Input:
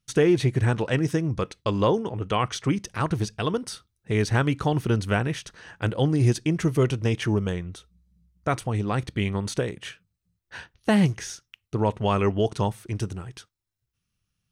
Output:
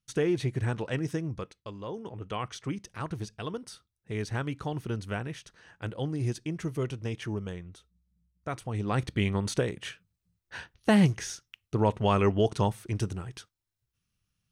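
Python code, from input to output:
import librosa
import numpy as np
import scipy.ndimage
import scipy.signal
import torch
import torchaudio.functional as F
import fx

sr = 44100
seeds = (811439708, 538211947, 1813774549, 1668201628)

y = fx.gain(x, sr, db=fx.line((1.27, -7.5), (1.83, -19.0), (2.06, -10.0), (8.57, -10.0), (8.99, -1.5)))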